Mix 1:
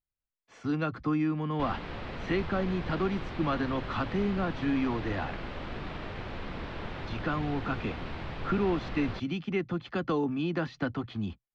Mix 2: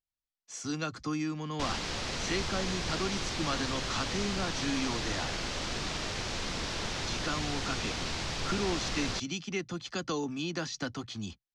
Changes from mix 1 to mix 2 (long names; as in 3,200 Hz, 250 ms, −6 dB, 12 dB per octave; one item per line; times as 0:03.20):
speech −6.0 dB
master: remove high-frequency loss of the air 500 metres